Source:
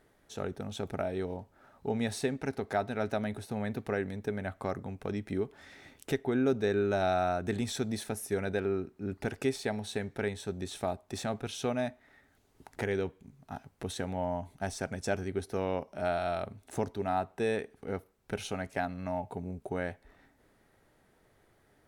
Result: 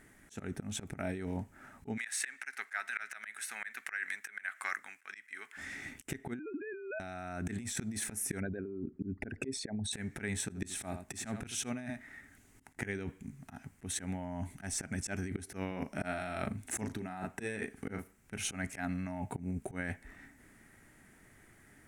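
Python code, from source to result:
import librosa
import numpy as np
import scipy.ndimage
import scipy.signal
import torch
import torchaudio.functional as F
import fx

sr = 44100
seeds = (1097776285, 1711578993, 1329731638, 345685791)

y = fx.highpass_res(x, sr, hz=1600.0, q=2.0, at=(1.96, 5.56), fade=0.02)
y = fx.sine_speech(y, sr, at=(6.39, 7.0))
y = fx.envelope_sharpen(y, sr, power=2.0, at=(8.4, 9.93))
y = fx.echo_single(y, sr, ms=80, db=-14.5, at=(10.49, 12.85), fade=0.02)
y = fx.doubler(y, sr, ms=38.0, db=-7.5, at=(15.67, 18.37))
y = fx.graphic_eq(y, sr, hz=(250, 500, 1000, 2000, 4000, 8000), db=(5, -9, -4, 8, -8, 9))
y = fx.auto_swell(y, sr, attack_ms=198.0)
y = fx.over_compress(y, sr, threshold_db=-40.0, ratio=-1.0)
y = y * librosa.db_to_amplitude(2.5)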